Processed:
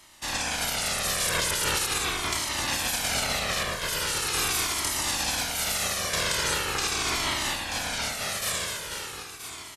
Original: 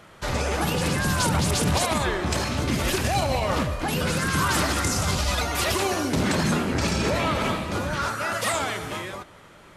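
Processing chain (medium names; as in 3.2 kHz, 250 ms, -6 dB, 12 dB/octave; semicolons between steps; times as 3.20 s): spectral peaks clipped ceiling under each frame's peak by 26 dB; delay 976 ms -10 dB; Shepard-style flanger falling 0.41 Hz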